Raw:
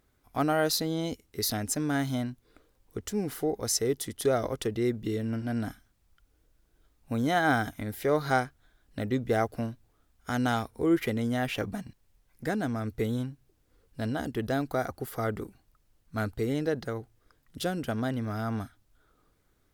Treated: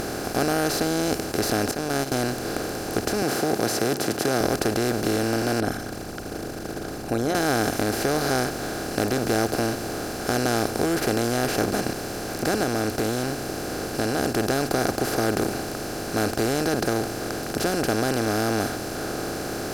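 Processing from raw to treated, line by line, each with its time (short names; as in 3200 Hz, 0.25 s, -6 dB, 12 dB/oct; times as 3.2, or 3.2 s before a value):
1.71–2.12 gate -27 dBFS, range -29 dB
3.22–4.41 HPF 140 Hz 24 dB/oct
5.6–7.35 formant sharpening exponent 2
12.63–14.33 compressor, threshold -33 dBFS
whole clip: per-bin compression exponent 0.2; low shelf 210 Hz +6 dB; gain -6 dB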